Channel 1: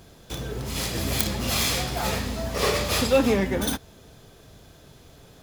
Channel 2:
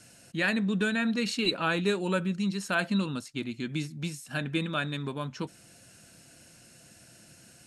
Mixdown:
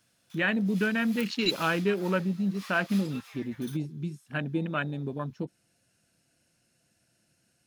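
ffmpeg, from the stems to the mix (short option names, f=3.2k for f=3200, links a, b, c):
-filter_complex "[0:a]highpass=f=1.1k:w=0.5412,highpass=f=1.1k:w=1.3066,volume=-18.5dB[a];[1:a]afwtdn=0.02,volume=1dB[b];[a][b]amix=inputs=2:normalize=0,equalizer=f=7.5k:t=o:w=0.34:g=-4"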